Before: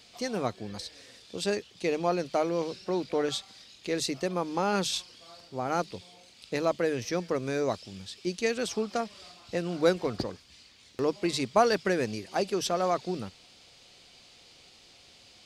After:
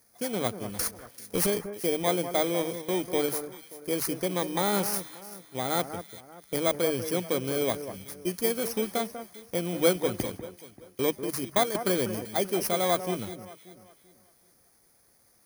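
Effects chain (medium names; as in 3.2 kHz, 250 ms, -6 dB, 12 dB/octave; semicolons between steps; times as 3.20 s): bit-reversed sample order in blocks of 16 samples; gate -42 dBFS, range -9 dB; 0.79–1.47 s: waveshaping leveller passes 3; 11.15–11.75 s: level held to a coarse grid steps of 11 dB; on a send: echo whose repeats swap between lows and highs 194 ms, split 1.8 kHz, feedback 56%, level -10 dB; on the sum: trim +1 dB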